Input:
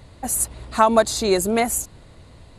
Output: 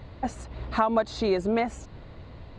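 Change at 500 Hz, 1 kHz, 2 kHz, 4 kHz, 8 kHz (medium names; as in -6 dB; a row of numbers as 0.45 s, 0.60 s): -6.5 dB, -7.5 dB, -7.0 dB, -10.5 dB, -25.5 dB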